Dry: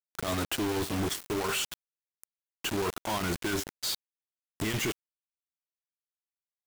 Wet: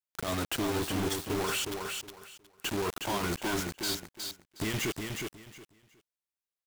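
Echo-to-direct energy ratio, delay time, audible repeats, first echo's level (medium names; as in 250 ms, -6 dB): -5.0 dB, 364 ms, 3, -5.0 dB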